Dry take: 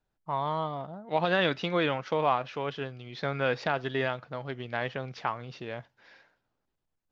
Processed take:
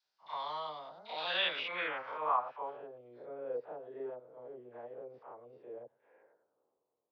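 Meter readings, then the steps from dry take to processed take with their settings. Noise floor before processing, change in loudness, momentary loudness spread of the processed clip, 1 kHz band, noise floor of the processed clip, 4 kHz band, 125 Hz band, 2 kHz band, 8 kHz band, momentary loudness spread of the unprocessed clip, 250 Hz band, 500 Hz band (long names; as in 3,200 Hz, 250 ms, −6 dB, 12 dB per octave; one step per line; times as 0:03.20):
−81 dBFS, −7.0 dB, 18 LU, −7.0 dB, below −85 dBFS, −2.0 dB, −28.5 dB, −7.5 dB, can't be measured, 12 LU, −20.0 dB, −11.0 dB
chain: spectrum averaged block by block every 100 ms
in parallel at +3 dB: downward compressor, threshold −41 dBFS, peak gain reduction 18 dB
on the sum: graphic EQ with 10 bands 500 Hz +6 dB, 1,000 Hz +5 dB, 4,000 Hz −8 dB
low-pass filter sweep 4,700 Hz → 450 Hz, 0:01.11–0:03.17
all-pass dispersion lows, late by 61 ms, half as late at 990 Hz
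band-pass filter sweep 4,600 Hz → 1,100 Hz, 0:05.72–0:06.75
on a send: backwards echo 33 ms −6.5 dB
on the sum: level +5.5 dB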